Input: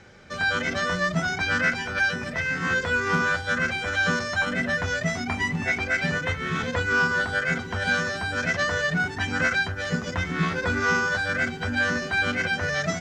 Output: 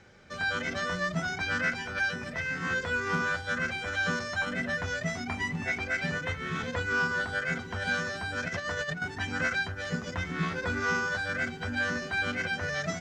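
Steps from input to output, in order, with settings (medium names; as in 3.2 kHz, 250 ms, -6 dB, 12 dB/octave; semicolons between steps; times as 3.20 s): 8.48–9.02 s: compressor with a negative ratio -27 dBFS, ratio -0.5; trim -6 dB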